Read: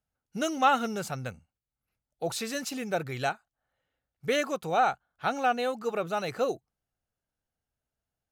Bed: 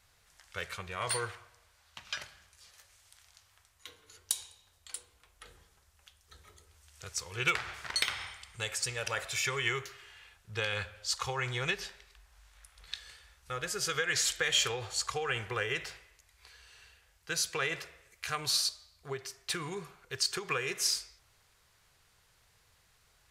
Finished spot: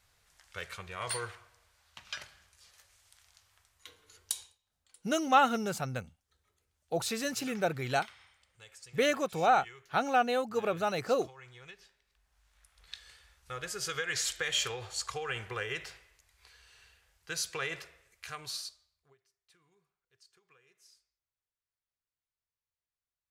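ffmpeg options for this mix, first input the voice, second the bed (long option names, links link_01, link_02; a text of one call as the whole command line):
ffmpeg -i stem1.wav -i stem2.wav -filter_complex "[0:a]adelay=4700,volume=-0.5dB[link_01];[1:a]volume=13dB,afade=type=out:start_time=4.37:duration=0.21:silence=0.158489,afade=type=in:start_time=12.03:duration=1.19:silence=0.16788,afade=type=out:start_time=17.75:duration=1.41:silence=0.0334965[link_02];[link_01][link_02]amix=inputs=2:normalize=0" out.wav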